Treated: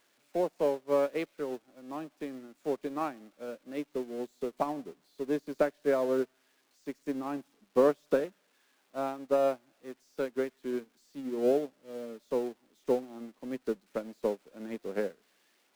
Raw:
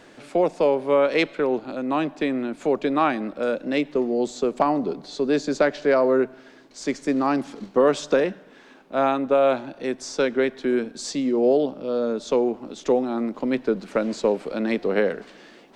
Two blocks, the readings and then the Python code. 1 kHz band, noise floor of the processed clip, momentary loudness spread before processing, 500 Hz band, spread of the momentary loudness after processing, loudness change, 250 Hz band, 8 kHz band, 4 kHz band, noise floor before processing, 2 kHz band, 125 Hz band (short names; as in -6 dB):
-12.0 dB, -71 dBFS, 8 LU, -9.5 dB, 15 LU, -10.0 dB, -12.0 dB, under -15 dB, -16.5 dB, -49 dBFS, -15.0 dB, -12.0 dB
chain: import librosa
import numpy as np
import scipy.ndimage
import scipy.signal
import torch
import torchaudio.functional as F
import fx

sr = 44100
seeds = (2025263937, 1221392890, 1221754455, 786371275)

y = x + 0.5 * 10.0 ** (-13.5 / 20.0) * np.diff(np.sign(x), prepend=np.sign(x[:1]))
y = fx.lowpass(y, sr, hz=1100.0, slope=6)
y = fx.upward_expand(y, sr, threshold_db=-34.0, expansion=2.5)
y = y * librosa.db_to_amplitude(-3.5)